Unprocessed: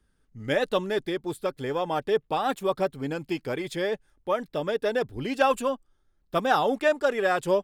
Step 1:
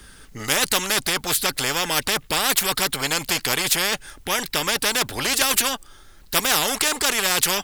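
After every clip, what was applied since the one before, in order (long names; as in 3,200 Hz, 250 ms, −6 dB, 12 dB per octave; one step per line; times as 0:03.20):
tilt shelving filter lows −6 dB, about 1,100 Hz
every bin compressed towards the loudest bin 4 to 1
level +6 dB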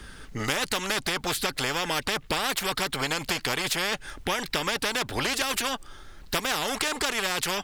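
high-shelf EQ 6,700 Hz −12 dB
downward compressor, threshold −27 dBFS, peak gain reduction 10 dB
level +3 dB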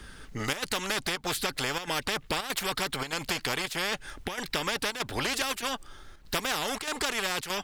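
square-wave tremolo 1.6 Hz, depth 60%, duty 85%
level −2.5 dB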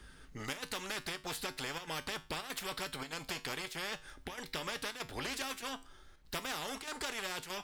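tuned comb filter 53 Hz, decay 0.32 s, harmonics odd, mix 60%
level −4 dB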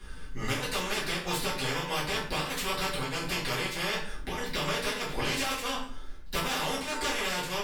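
rectangular room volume 58 cubic metres, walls mixed, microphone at 1.8 metres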